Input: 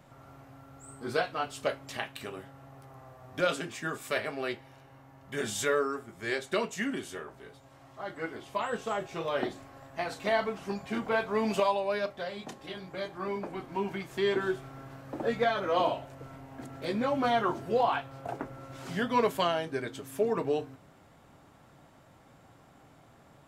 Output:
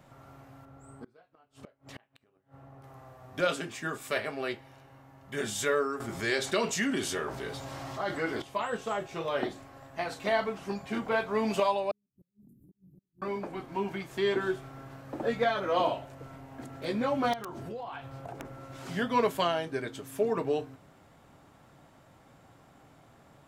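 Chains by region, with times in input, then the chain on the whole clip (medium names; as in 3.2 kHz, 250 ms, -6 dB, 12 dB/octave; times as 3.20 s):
0.65–2.84 s: treble shelf 2.4 kHz -11.5 dB + inverted gate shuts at -33 dBFS, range -30 dB
6.00–8.42 s: peaking EQ 5 kHz +5 dB 0.96 oct + level flattener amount 50%
11.91–13.22 s: inverted gate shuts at -28 dBFS, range -36 dB + inverse Chebyshev band-stop 760–5100 Hz, stop band 60 dB + compression 4:1, threshold -55 dBFS
17.33–18.45 s: bass shelf 140 Hz +7 dB + compression 8:1, threshold -36 dBFS + integer overflow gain 29 dB
whole clip: none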